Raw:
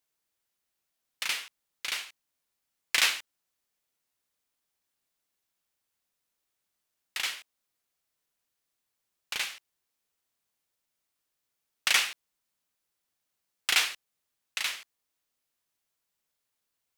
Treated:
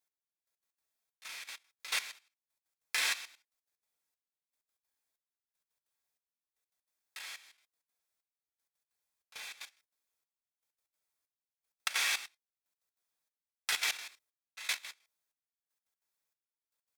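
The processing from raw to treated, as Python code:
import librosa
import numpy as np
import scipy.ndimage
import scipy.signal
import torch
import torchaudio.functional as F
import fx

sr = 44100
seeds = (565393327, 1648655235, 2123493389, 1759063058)

y = fx.peak_eq(x, sr, hz=160.0, db=-7.0, octaves=1.9)
y = fx.notch(y, sr, hz=2900.0, q=7.5)
y = fx.rev_gated(y, sr, seeds[0], gate_ms=250, shape='falling', drr_db=-6.0)
y = fx.step_gate(y, sr, bpm=192, pattern='x.....x.x.xxx', floor_db=-12.0, edge_ms=4.5)
y = fx.level_steps(y, sr, step_db=14)
y = y * librosa.db_to_amplitude(-3.0)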